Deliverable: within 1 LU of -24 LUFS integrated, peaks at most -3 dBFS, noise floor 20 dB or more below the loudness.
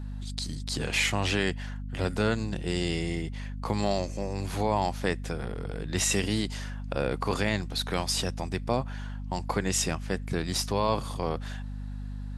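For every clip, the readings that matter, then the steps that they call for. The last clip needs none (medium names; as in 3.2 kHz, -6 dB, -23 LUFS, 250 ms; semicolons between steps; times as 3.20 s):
hum 50 Hz; highest harmonic 250 Hz; hum level -33 dBFS; loudness -30.0 LUFS; peak level -11.5 dBFS; loudness target -24.0 LUFS
-> hum notches 50/100/150/200/250 Hz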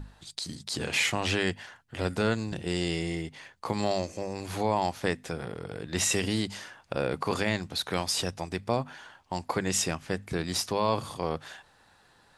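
hum not found; loudness -30.5 LUFS; peak level -12.0 dBFS; loudness target -24.0 LUFS
-> trim +6.5 dB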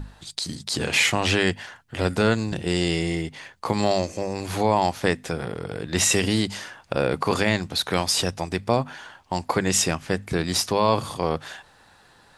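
loudness -24.0 LUFS; peak level -5.5 dBFS; noise floor -55 dBFS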